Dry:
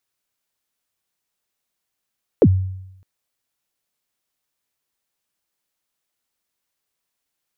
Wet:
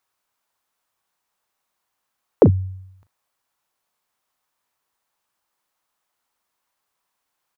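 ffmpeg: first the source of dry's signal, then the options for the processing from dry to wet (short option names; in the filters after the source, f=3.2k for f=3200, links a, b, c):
-f lavfi -i "aevalsrc='0.501*pow(10,-3*t/0.85)*sin(2*PI*(560*0.056/log(94/560)*(exp(log(94/560)*min(t,0.056)/0.056)-1)+94*max(t-0.056,0)))':d=0.61:s=44100"
-filter_complex "[0:a]equalizer=f=1k:w=1:g=11,asplit=2[a][b];[b]adelay=38,volume=-12.5dB[c];[a][c]amix=inputs=2:normalize=0"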